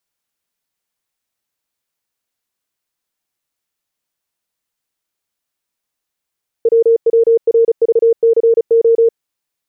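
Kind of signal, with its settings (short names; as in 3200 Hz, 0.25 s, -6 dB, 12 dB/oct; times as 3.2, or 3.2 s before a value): Morse "WWRVCO" 35 wpm 459 Hz -6.5 dBFS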